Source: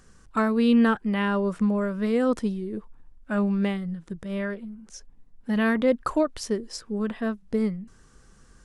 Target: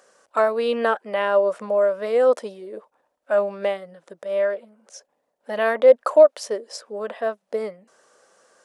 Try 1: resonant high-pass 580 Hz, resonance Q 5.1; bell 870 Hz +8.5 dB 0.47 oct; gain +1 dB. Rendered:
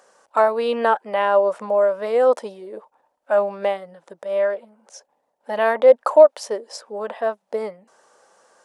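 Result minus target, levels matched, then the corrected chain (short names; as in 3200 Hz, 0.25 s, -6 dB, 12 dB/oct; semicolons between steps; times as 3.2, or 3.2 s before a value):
1000 Hz band +3.0 dB
resonant high-pass 580 Hz, resonance Q 5.1; gain +1 dB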